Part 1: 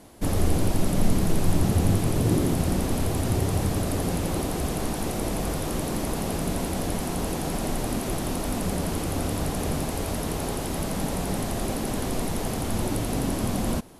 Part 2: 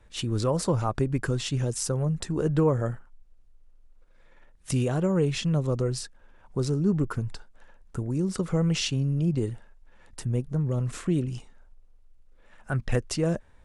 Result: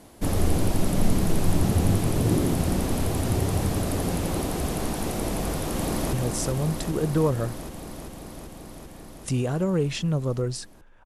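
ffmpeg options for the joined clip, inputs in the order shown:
ffmpeg -i cue0.wav -i cue1.wav -filter_complex "[0:a]apad=whole_dur=11.05,atrim=end=11.05,atrim=end=6.132[link_01];[1:a]atrim=start=1.548:end=6.47[link_02];[link_01][link_02]acrossfade=duration=0.004:curve1=hsin:curve2=hsin,asplit=2[link_03][link_04];[link_04]afade=type=in:start_time=5.37:duration=0.01,afade=type=out:start_time=6.13:duration=0.01,aecho=0:1:390|780|1170|1560|1950|2340|2730|3120|3510|3900|4290|4680:0.595662|0.47653|0.381224|0.304979|0.243983|0.195187|0.156149|0.124919|0.0999355|0.0799484|0.0639587|0.051167[link_05];[link_03][link_05]amix=inputs=2:normalize=0" out.wav

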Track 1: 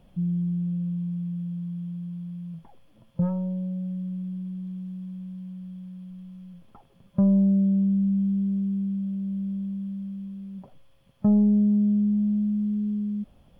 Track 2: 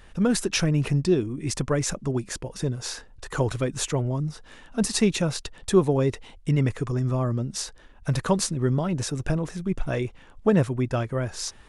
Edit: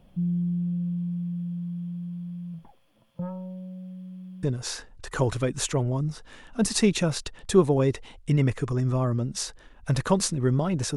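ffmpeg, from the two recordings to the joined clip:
ffmpeg -i cue0.wav -i cue1.wav -filter_complex "[0:a]asettb=1/sr,asplit=3[link_01][link_02][link_03];[link_01]atrim=end=2.714[link_04];[link_02]atrim=start=2.71:end=4.43,asetpts=PTS-STARTPTS,afade=type=in:duration=0.004:curve=qsin,afade=type=out:start_time=1.716:duration=0.004:curve=qsin,lowshelf=frequency=370:gain=-11[link_05];[link_03]atrim=start=4.426[link_06];[link_04][link_05]acrossfade=duration=0.004:curve1=hsin:curve2=qsin[link_07];[link_07][link_06]acrossfade=duration=0.004:curve1=qsin:curve2=hsin,apad=whole_dur=10.96,atrim=end=10.96,atrim=end=4.432[link_08];[1:a]atrim=start=2.618:end=9.15[link_09];[link_08][link_09]acrossfade=duration=0.004:curve1=hsin:curve2=hsin" out.wav

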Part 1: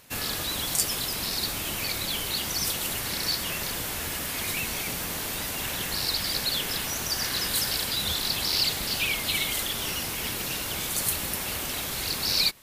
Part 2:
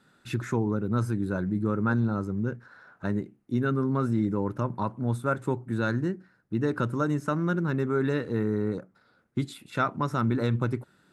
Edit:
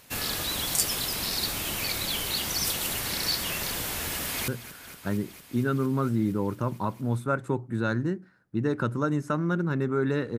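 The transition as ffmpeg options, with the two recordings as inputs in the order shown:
ffmpeg -i cue0.wav -i cue1.wav -filter_complex "[0:a]apad=whole_dur=10.38,atrim=end=10.38,atrim=end=4.482[link_01];[1:a]atrim=start=2.458:end=8.36[link_02];[link_01][link_02]acrossfade=duration=0.004:curve1=hsin:curve2=hsin,asplit=2[link_03][link_04];[link_04]afade=type=in:start_time=4.18:duration=0.01,afade=type=out:start_time=4.48:duration=0.01,aecho=0:1:230|460|690|920|1150|1380|1610|1840|2070|2300|2530|2760:0.199526|0.169597|0.144158|0.122534|0.104154|0.0885308|0.0752512|0.0639635|0.054369|0.0462137|0.0392816|0.0333894[link_05];[link_03][link_05]amix=inputs=2:normalize=0" out.wav

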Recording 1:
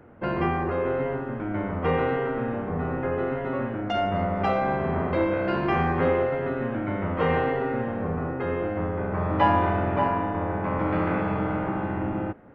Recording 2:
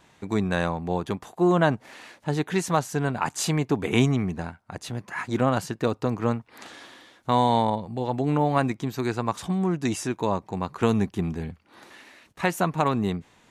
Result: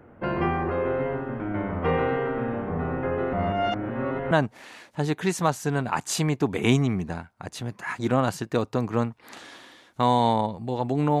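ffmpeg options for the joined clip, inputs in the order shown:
ffmpeg -i cue0.wav -i cue1.wav -filter_complex "[0:a]apad=whole_dur=11.2,atrim=end=11.2,asplit=2[link_01][link_02];[link_01]atrim=end=3.332[link_03];[link_02]atrim=start=3.328:end=4.312,asetpts=PTS-STARTPTS,areverse[link_04];[1:a]atrim=start=1.598:end=8.49[link_05];[link_03][link_04]acrossfade=duration=0.004:curve1=hsin:curve2=hsin[link_06];[link_06][link_05]acrossfade=duration=0.004:curve1=hsin:curve2=hsin" out.wav

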